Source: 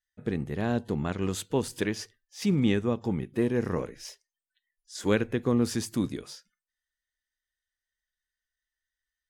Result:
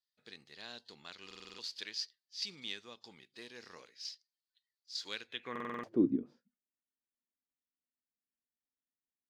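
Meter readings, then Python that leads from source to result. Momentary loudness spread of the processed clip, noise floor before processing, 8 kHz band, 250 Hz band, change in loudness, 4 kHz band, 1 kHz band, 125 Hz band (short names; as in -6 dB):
21 LU, under -85 dBFS, -13.0 dB, -11.0 dB, -10.5 dB, -0.5 dB, -10.5 dB, -23.5 dB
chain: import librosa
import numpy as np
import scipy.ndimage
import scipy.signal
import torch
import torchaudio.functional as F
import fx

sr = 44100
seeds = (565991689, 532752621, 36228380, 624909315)

y = scipy.signal.medfilt(x, 5)
y = fx.filter_sweep_bandpass(y, sr, from_hz=4500.0, to_hz=250.0, start_s=5.26, end_s=6.12, q=5.2)
y = fx.buffer_glitch(y, sr, at_s=(1.26, 5.51), block=2048, repeats=6)
y = F.gain(torch.from_numpy(y), 9.0).numpy()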